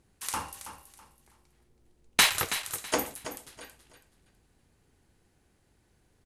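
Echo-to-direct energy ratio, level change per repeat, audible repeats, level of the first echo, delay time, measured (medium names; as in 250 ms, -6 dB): -11.0 dB, -11.5 dB, 3, -11.5 dB, 326 ms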